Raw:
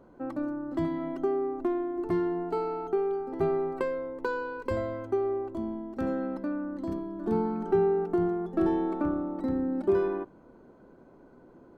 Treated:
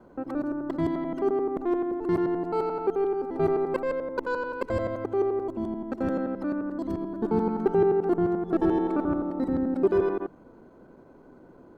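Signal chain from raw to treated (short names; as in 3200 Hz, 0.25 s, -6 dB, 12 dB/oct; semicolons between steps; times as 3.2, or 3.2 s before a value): local time reversal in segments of 87 ms; gain +3 dB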